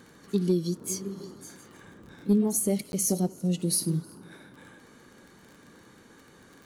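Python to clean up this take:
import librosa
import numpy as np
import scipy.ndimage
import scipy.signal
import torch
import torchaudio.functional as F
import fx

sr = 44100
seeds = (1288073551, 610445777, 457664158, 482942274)

y = fx.fix_declick_ar(x, sr, threshold=6.5)
y = fx.fix_interpolate(y, sr, at_s=(2.92,), length_ms=11.0)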